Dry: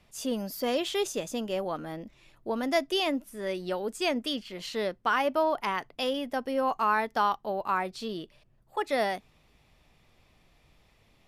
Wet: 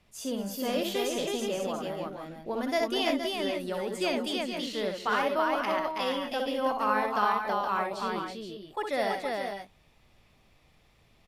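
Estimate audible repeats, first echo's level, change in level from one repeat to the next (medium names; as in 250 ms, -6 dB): 4, -5.0 dB, no regular repeats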